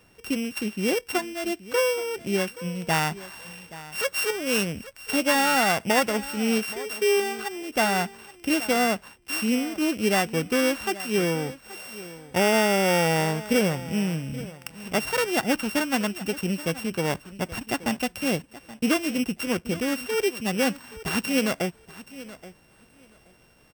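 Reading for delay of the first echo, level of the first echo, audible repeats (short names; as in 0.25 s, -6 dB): 0.826 s, -17.0 dB, 2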